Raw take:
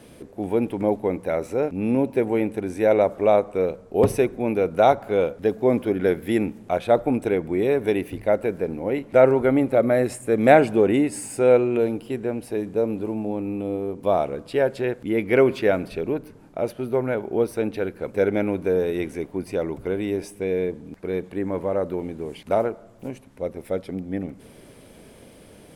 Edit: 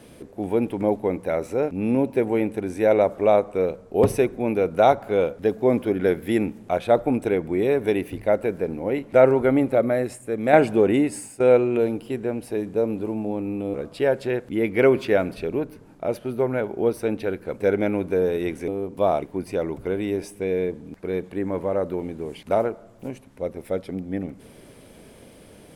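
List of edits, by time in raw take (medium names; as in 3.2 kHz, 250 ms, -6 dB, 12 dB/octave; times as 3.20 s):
9.69–10.53 s: fade out quadratic, to -6.5 dB
11.11–11.40 s: fade out, to -15 dB
13.74–14.28 s: move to 19.22 s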